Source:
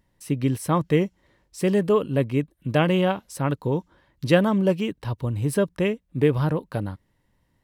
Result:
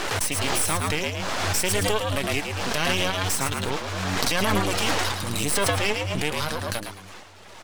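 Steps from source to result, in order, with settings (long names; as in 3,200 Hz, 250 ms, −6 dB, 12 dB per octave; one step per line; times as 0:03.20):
wind on the microphone 600 Hz −33 dBFS
meter weighting curve ITU-R 468
reverb reduction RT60 1 s
high-shelf EQ 6,300 Hz +11.5 dB
0:04.26–0:06.28: transient designer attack −6 dB, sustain +12 dB
flanger 0.43 Hz, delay 2.6 ms, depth 5.3 ms, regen −48%
half-wave rectification
echo with shifted repeats 109 ms, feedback 30%, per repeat +93 Hz, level −7.5 dB
boost into a limiter +18.5 dB
background raised ahead of every attack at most 22 dB per second
level −9.5 dB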